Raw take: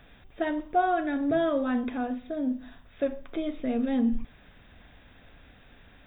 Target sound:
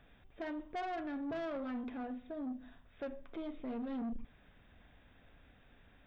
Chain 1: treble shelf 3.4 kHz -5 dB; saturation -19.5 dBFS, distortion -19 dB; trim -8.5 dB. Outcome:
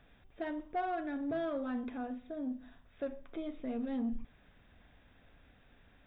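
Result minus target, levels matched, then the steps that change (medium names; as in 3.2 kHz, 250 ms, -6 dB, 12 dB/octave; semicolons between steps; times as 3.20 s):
saturation: distortion -9 dB
change: saturation -27.5 dBFS, distortion -10 dB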